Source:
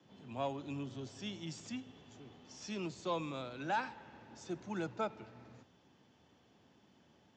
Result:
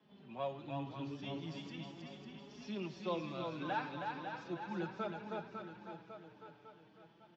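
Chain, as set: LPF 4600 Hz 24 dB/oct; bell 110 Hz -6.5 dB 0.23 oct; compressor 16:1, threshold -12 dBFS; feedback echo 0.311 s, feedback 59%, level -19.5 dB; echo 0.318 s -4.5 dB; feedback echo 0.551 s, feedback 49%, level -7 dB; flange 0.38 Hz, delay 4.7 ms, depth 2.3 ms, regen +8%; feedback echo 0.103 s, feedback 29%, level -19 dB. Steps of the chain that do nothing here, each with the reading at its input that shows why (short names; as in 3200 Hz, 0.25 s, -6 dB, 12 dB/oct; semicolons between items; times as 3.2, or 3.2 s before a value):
compressor, threshold -12 dBFS: input peak -24.5 dBFS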